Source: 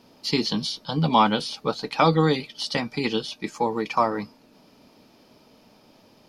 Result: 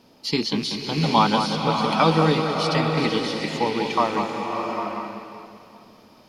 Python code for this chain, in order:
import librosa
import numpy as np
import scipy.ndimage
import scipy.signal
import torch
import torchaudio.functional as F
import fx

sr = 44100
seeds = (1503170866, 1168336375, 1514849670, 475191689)

y = fx.rattle_buzz(x, sr, strikes_db=-34.0, level_db=-26.0)
y = fx.echo_alternate(y, sr, ms=191, hz=2100.0, feedback_pct=61, wet_db=-6.5)
y = fx.rev_bloom(y, sr, seeds[0], attack_ms=770, drr_db=3.0)